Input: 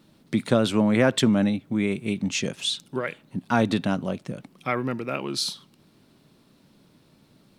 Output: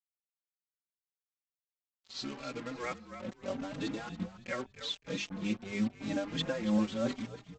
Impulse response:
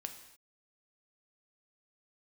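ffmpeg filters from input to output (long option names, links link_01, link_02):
-filter_complex "[0:a]areverse,highshelf=frequency=3000:gain=-2.5,bandreject=frequency=50:width_type=h:width=6,bandreject=frequency=100:width_type=h:width=6,bandreject=frequency=150:width_type=h:width=6,bandreject=frequency=200:width_type=h:width=6,bandreject=frequency=250:width_type=h:width=6,bandreject=frequency=300:width_type=h:width=6,bandreject=frequency=350:width_type=h:width=6,bandreject=frequency=400:width_type=h:width=6,acrossover=split=5400[link_01][link_02];[link_02]acompressor=threshold=-53dB:ratio=6[link_03];[link_01][link_03]amix=inputs=2:normalize=0,alimiter=limit=-15.5dB:level=0:latency=1:release=15,tremolo=f=3.1:d=0.66,aecho=1:1:3.7:0.45,aresample=16000,acrusher=bits=5:mix=0:aa=0.5,aresample=44100,asplit=4[link_04][link_05][link_06][link_07];[link_05]adelay=281,afreqshift=-45,volume=-12.5dB[link_08];[link_06]adelay=562,afreqshift=-90,volume=-22.1dB[link_09];[link_07]adelay=843,afreqshift=-135,volume=-31.8dB[link_10];[link_04][link_08][link_09][link_10]amix=inputs=4:normalize=0,asplit=2[link_11][link_12];[link_12]adelay=4.6,afreqshift=0.82[link_13];[link_11][link_13]amix=inputs=2:normalize=1,volume=-4dB"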